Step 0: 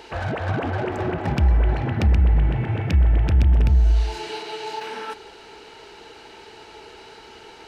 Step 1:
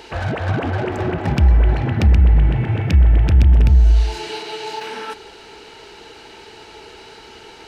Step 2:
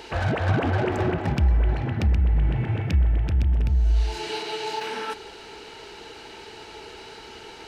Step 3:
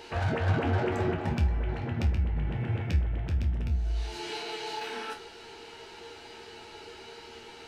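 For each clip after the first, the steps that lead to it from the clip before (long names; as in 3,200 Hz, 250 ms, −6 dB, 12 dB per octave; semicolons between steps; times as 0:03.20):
parametric band 820 Hz −3 dB 2.6 octaves; level +5 dB
speech leveller within 5 dB 0.5 s; level −6.5 dB
resonators tuned to a chord D#2 minor, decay 0.23 s; level +5 dB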